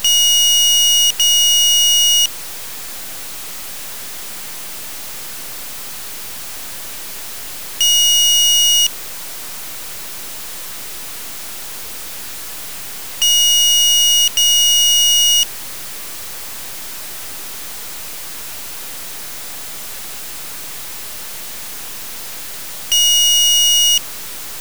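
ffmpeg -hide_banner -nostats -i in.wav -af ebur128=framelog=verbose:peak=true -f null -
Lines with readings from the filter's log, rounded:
Integrated loudness:
  I:          -9.9 LUFS
  Threshold: -24.6 LUFS
Loudness range:
  LRA:        15.8 LU
  Threshold: -35.5 LUFS
  LRA low:   -26.4 LUFS
  LRA high:  -10.6 LUFS
True peak:
  Peak:       -5.2 dBFS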